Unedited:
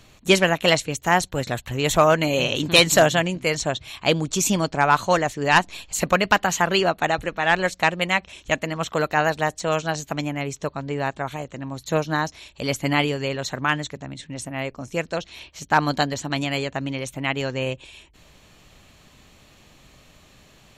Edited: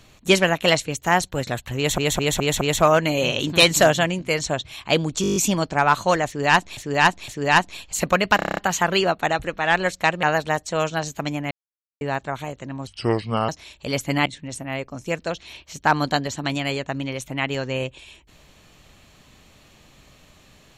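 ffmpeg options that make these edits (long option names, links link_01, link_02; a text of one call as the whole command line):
ffmpeg -i in.wav -filter_complex "[0:a]asplit=27[link_01][link_02][link_03][link_04][link_05][link_06][link_07][link_08][link_09][link_10][link_11][link_12][link_13][link_14][link_15][link_16][link_17][link_18][link_19][link_20][link_21][link_22][link_23][link_24][link_25][link_26][link_27];[link_01]atrim=end=1.982[link_28];[link_02]atrim=start=1.768:end=1.982[link_29];[link_03]atrim=start=1.768:end=1.982[link_30];[link_04]atrim=start=1.768:end=1.982[link_31];[link_05]atrim=start=1.768:end=4.402[link_32];[link_06]atrim=start=4.378:end=4.402[link_33];[link_07]atrim=start=4.378:end=4.402[link_34];[link_08]atrim=start=4.378:end=4.402[link_35];[link_09]atrim=start=4.378:end=4.402[link_36];[link_10]atrim=start=4.378:end=4.402[link_37];[link_11]atrim=start=4.378:end=4.402[link_38];[link_12]atrim=start=4.378:end=5.792[link_39];[link_13]atrim=start=5.278:end=5.792[link_40];[link_14]atrim=start=5.278:end=6.392[link_41];[link_15]atrim=start=6.358:end=6.392[link_42];[link_16]atrim=start=6.358:end=6.392[link_43];[link_17]atrim=start=6.358:end=6.392[link_44];[link_18]atrim=start=6.358:end=6.392[link_45];[link_19]atrim=start=6.358:end=6.392[link_46];[link_20]atrim=start=6.358:end=6.392[link_47];[link_21]atrim=start=6.358:end=8.022[link_48];[link_22]atrim=start=9.148:end=10.43,asetpts=PTS-STARTPTS,afade=type=out:start_time=1.278:duration=0.004:curve=hsin[link_49];[link_23]atrim=start=10.43:end=10.93,asetpts=PTS-STARTPTS,volume=0[link_50];[link_24]atrim=start=10.93:end=11.794,asetpts=PTS-STARTPTS,afade=type=in:duration=0.004:curve=hsin[link_51];[link_25]atrim=start=11.79:end=12.24,asetpts=PTS-STARTPTS,asetrate=32193,aresample=44100[link_52];[link_26]atrim=start=12.236:end=13.012[link_53];[link_27]atrim=start=14.118[link_54];[link_28][link_29]acrossfade=duration=0.004:curve1=hsin:curve2=hsin[link_55];[link_55][link_30]acrossfade=duration=0.004:curve1=hsin:curve2=hsin[link_56];[link_56][link_31]acrossfade=duration=0.004:curve1=hsin:curve2=hsin[link_57];[link_57][link_32]acrossfade=duration=0.004:curve1=hsin:curve2=hsin[link_58];[link_58][link_33]acrossfade=duration=0.004:curve1=hsin:curve2=hsin[link_59];[link_59][link_34]acrossfade=duration=0.004:curve1=hsin:curve2=hsin[link_60];[link_60][link_35]acrossfade=duration=0.004:curve1=hsin:curve2=hsin[link_61];[link_61][link_36]acrossfade=duration=0.004:curve1=hsin:curve2=hsin[link_62];[link_62][link_37]acrossfade=duration=0.004:curve1=hsin:curve2=hsin[link_63];[link_63][link_38]acrossfade=duration=0.004:curve1=hsin:curve2=hsin[link_64];[link_64][link_39]acrossfade=duration=0.004:curve1=hsin:curve2=hsin[link_65];[link_65][link_40]acrossfade=duration=0.004:curve1=hsin:curve2=hsin[link_66];[link_66][link_41]acrossfade=duration=0.004:curve1=hsin:curve2=hsin[link_67];[link_67][link_42]acrossfade=duration=0.004:curve1=hsin:curve2=hsin[link_68];[link_68][link_43]acrossfade=duration=0.004:curve1=hsin:curve2=hsin[link_69];[link_69][link_44]acrossfade=duration=0.004:curve1=hsin:curve2=hsin[link_70];[link_70][link_45]acrossfade=duration=0.004:curve1=hsin:curve2=hsin[link_71];[link_71][link_46]acrossfade=duration=0.004:curve1=hsin:curve2=hsin[link_72];[link_72][link_47]acrossfade=duration=0.004:curve1=hsin:curve2=hsin[link_73];[link_73][link_48]acrossfade=duration=0.004:curve1=hsin:curve2=hsin[link_74];[link_49][link_50][link_51]concat=n=3:v=0:a=1[link_75];[link_74][link_75]acrossfade=duration=0.004:curve1=hsin:curve2=hsin[link_76];[link_76][link_52]acrossfade=duration=0.004:curve1=hsin:curve2=hsin[link_77];[link_77][link_53]acrossfade=duration=0.004:curve1=hsin:curve2=hsin[link_78];[link_78][link_54]acrossfade=duration=0.004:curve1=hsin:curve2=hsin" out.wav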